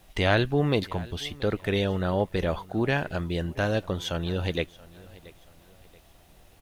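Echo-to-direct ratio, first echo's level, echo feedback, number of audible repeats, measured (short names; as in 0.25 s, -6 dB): -20.5 dB, -21.0 dB, 37%, 2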